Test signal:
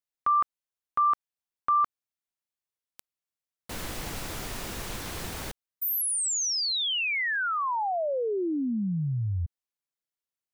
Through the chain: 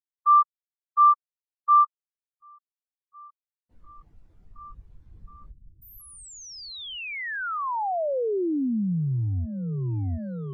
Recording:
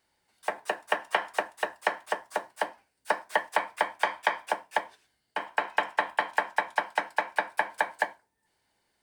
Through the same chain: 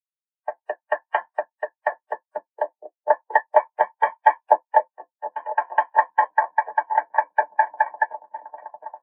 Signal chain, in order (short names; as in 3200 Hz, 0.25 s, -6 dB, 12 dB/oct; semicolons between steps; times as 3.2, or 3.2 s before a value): repeats that get brighter 0.719 s, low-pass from 200 Hz, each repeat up 1 oct, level 0 dB; sample leveller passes 1; spectral expander 2.5:1; gain +6.5 dB